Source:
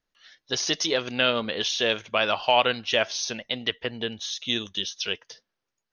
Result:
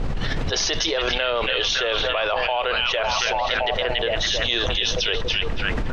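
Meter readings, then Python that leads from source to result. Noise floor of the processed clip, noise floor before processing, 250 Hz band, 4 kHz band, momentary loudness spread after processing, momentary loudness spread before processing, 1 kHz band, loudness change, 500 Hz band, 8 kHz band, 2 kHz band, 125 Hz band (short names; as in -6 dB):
-25 dBFS, -84 dBFS, +0.5 dB, +4.5 dB, 3 LU, 9 LU, +3.5 dB, +4.0 dB, +4.0 dB, +2.5 dB, +5.5 dB, +10.5 dB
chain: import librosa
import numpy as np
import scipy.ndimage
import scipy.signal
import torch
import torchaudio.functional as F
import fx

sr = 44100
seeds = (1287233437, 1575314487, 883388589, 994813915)

p1 = scipy.signal.sosfilt(scipy.signal.butter(4, 400.0, 'highpass', fs=sr, output='sos'), x)
p2 = fx.peak_eq(p1, sr, hz=740.0, db=4.0, octaves=2.2)
p3 = fx.dmg_noise_colour(p2, sr, seeds[0], colour='brown', level_db=-41.0)
p4 = fx.air_absorb(p3, sr, metres=98.0)
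p5 = p4 + fx.echo_stepped(p4, sr, ms=280, hz=2600.0, octaves=-0.7, feedback_pct=70, wet_db=-3, dry=0)
p6 = fx.env_flatten(p5, sr, amount_pct=100)
y = F.gain(torch.from_numpy(p6), -8.0).numpy()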